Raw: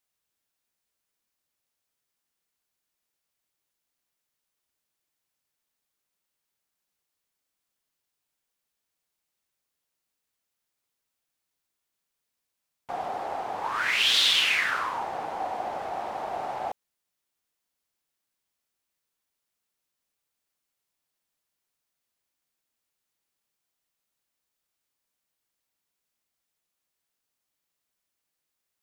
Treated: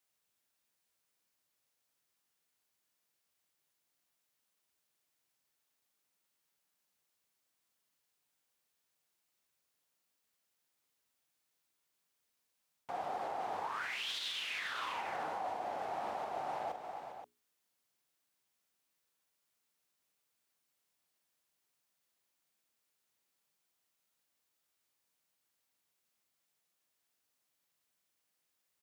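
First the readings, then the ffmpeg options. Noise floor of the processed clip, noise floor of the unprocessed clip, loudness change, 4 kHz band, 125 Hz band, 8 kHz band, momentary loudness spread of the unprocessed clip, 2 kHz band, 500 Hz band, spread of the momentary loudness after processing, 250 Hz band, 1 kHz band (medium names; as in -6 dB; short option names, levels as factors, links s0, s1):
-83 dBFS, -83 dBFS, -13.5 dB, -17.5 dB, -9.0 dB, -16.5 dB, 16 LU, -14.5 dB, -7.0 dB, 9 LU, -8.0 dB, -7.5 dB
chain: -af "highpass=78,aecho=1:1:42|283|403|525:0.335|0.126|0.15|0.126,areverse,acompressor=threshold=0.0224:ratio=6,areverse,alimiter=level_in=2.11:limit=0.0631:level=0:latency=1:release=132,volume=0.473,bandreject=f=60:t=h:w=6,bandreject=f=120:t=h:w=6,bandreject=f=180:t=h:w=6,bandreject=f=240:t=h:w=6,bandreject=f=300:t=h:w=6,bandreject=f=360:t=h:w=6,bandreject=f=420:t=h:w=6"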